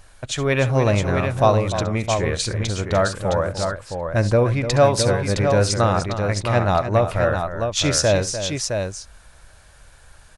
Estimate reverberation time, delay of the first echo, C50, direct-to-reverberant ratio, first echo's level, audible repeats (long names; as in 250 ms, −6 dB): no reverb audible, 67 ms, no reverb audible, no reverb audible, −15.5 dB, 3